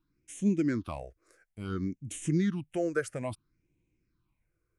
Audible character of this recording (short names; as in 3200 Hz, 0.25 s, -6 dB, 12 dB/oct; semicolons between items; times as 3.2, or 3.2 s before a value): phasing stages 6, 0.59 Hz, lowest notch 230–1300 Hz